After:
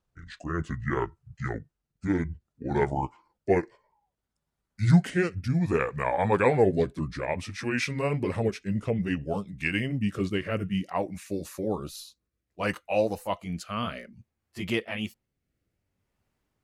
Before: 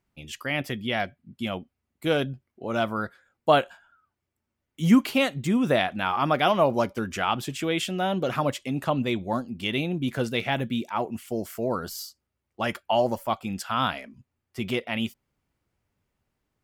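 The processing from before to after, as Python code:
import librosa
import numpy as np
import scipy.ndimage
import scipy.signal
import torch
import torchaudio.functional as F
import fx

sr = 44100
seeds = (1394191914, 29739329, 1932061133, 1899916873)

y = fx.pitch_glide(x, sr, semitones=-10.0, runs='ending unshifted')
y = fx.rotary(y, sr, hz=0.6)
y = y * librosa.db_to_amplitude(1.5)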